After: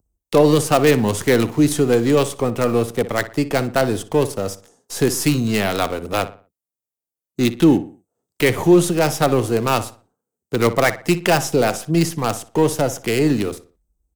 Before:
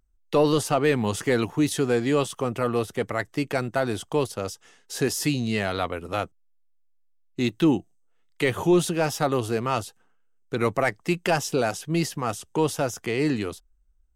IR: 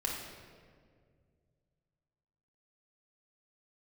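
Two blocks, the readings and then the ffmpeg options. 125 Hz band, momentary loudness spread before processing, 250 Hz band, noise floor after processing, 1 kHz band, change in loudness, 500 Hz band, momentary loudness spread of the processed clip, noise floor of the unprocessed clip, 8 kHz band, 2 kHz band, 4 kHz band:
+7.0 dB, 8 LU, +7.0 dB, below −85 dBFS, +6.0 dB, +7.0 dB, +7.0 dB, 9 LU, −62 dBFS, +7.0 dB, +5.5 dB, +6.0 dB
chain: -filter_complex "[0:a]highpass=72,acrossover=split=320|920|6000[link_01][link_02][link_03][link_04];[link_03]acrusher=bits=5:dc=4:mix=0:aa=0.000001[link_05];[link_01][link_02][link_05][link_04]amix=inputs=4:normalize=0,asplit=2[link_06][link_07];[link_07]adelay=60,lowpass=frequency=3000:poles=1,volume=-13.5dB,asplit=2[link_08][link_09];[link_09]adelay=60,lowpass=frequency=3000:poles=1,volume=0.37,asplit=2[link_10][link_11];[link_11]adelay=60,lowpass=frequency=3000:poles=1,volume=0.37,asplit=2[link_12][link_13];[link_13]adelay=60,lowpass=frequency=3000:poles=1,volume=0.37[link_14];[link_06][link_08][link_10][link_12][link_14]amix=inputs=5:normalize=0,volume=7dB"

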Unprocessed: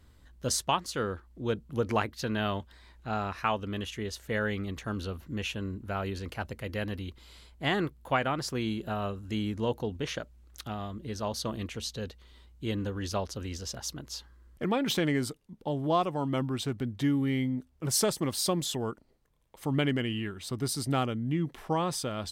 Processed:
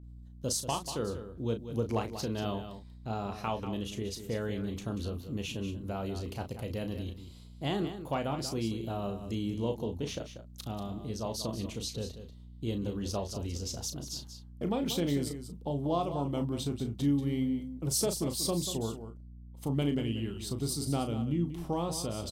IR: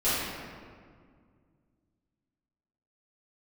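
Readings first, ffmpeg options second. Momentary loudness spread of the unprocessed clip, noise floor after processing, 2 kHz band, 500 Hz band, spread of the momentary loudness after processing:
10 LU, −49 dBFS, −11.0 dB, −2.5 dB, 9 LU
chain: -filter_complex "[0:a]agate=range=-33dB:threshold=-46dB:ratio=3:detection=peak,equalizer=frequency=1700:width=1.2:gain=-13.5,asplit=2[link_01][link_02];[link_02]acompressor=threshold=-39dB:ratio=6,volume=1dB[link_03];[link_01][link_03]amix=inputs=2:normalize=0,asoftclip=type=hard:threshold=-17dB,aeval=exprs='val(0)+0.00631*(sin(2*PI*60*n/s)+sin(2*PI*2*60*n/s)/2+sin(2*PI*3*60*n/s)/3+sin(2*PI*4*60*n/s)/4+sin(2*PI*5*60*n/s)/5)':channel_layout=same,asplit=2[link_04][link_05];[link_05]adelay=35,volume=-8dB[link_06];[link_04][link_06]amix=inputs=2:normalize=0,aecho=1:1:188:0.299,volume=-4.5dB"

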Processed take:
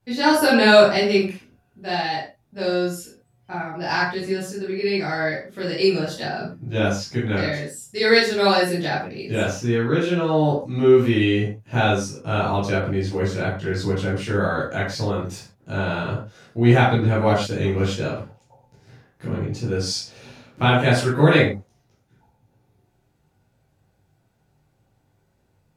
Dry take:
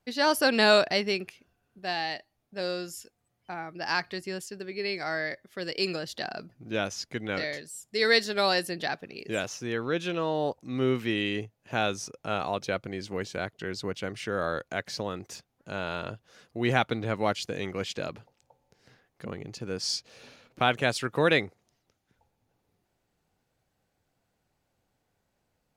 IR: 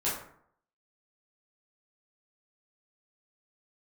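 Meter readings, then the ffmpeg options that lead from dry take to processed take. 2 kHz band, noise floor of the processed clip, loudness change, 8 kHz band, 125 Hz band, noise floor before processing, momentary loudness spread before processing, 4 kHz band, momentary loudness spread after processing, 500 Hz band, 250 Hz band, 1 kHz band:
+6.5 dB, −65 dBFS, +8.5 dB, +4.5 dB, +15.5 dB, −78 dBFS, 16 LU, +4.5 dB, 14 LU, +9.0 dB, +11.5 dB, +7.5 dB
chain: -filter_complex "[0:a]equalizer=frequency=100:width_type=o:width=2.1:gain=10.5[link_01];[1:a]atrim=start_sample=2205,atrim=end_sample=6174,asetrate=41013,aresample=44100[link_02];[link_01][link_02]afir=irnorm=-1:irlink=0,volume=-1.5dB"

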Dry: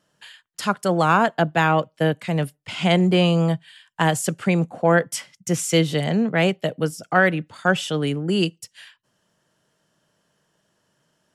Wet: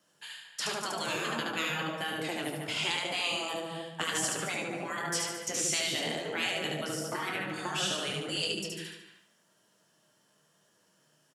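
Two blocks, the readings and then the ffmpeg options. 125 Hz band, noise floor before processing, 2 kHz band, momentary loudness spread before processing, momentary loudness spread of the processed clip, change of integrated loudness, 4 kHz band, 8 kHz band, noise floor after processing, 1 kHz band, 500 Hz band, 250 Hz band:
−20.5 dB, −72 dBFS, −9.5 dB, 9 LU, 6 LU, −11.0 dB, −2.5 dB, −2.0 dB, −69 dBFS, −13.5 dB, −15.0 dB, −17.5 dB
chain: -filter_complex "[0:a]aemphasis=mode=production:type=50fm,asplit=2[link_01][link_02];[link_02]aecho=0:1:73|146|219|292|365:0.708|0.297|0.125|0.0525|0.022[link_03];[link_01][link_03]amix=inputs=2:normalize=0,acrossover=split=7100[link_04][link_05];[link_05]acompressor=threshold=-36dB:ratio=4:attack=1:release=60[link_06];[link_04][link_06]amix=inputs=2:normalize=0,afftfilt=real='re*lt(hypot(re,im),0.355)':imag='im*lt(hypot(re,im),0.355)':win_size=1024:overlap=0.75,asplit=2[link_07][link_08];[link_08]adelay=225,lowpass=frequency=1700:poles=1,volume=-7.5dB,asplit=2[link_09][link_10];[link_10]adelay=225,lowpass=frequency=1700:poles=1,volume=0.15[link_11];[link_09][link_11]amix=inputs=2:normalize=0[link_12];[link_07][link_12]amix=inputs=2:normalize=0,flanger=delay=9:depth=7.1:regen=-39:speed=0.93:shape=triangular,highpass=150,highshelf=frequency=9700:gain=-11,asplit=2[link_13][link_14];[link_14]adelay=26,volume=-10.5dB[link_15];[link_13][link_15]amix=inputs=2:normalize=0,acrossover=split=220|3000[link_16][link_17][link_18];[link_17]acompressor=threshold=-35dB:ratio=2.5[link_19];[link_16][link_19][link_18]amix=inputs=3:normalize=0"

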